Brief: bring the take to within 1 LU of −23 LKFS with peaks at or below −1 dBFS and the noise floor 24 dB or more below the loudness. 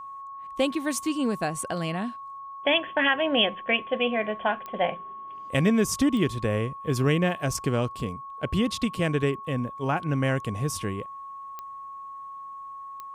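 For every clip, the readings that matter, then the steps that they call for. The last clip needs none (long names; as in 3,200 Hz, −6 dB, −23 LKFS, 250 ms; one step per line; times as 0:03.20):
number of clicks 4; interfering tone 1,100 Hz; level of the tone −37 dBFS; integrated loudness −26.5 LKFS; sample peak −10.5 dBFS; target loudness −23.0 LKFS
→ click removal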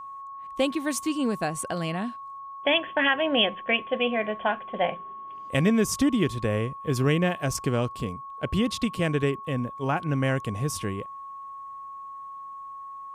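number of clicks 0; interfering tone 1,100 Hz; level of the tone −37 dBFS
→ notch filter 1,100 Hz, Q 30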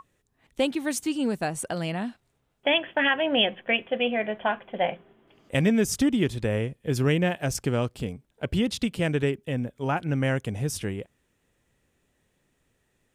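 interfering tone none found; integrated loudness −26.5 LKFS; sample peak −10.5 dBFS; target loudness −23.0 LKFS
→ level +3.5 dB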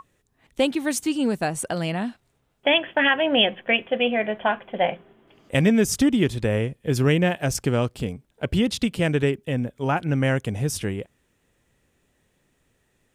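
integrated loudness −23.0 LKFS; sample peak −7.0 dBFS; background noise floor −69 dBFS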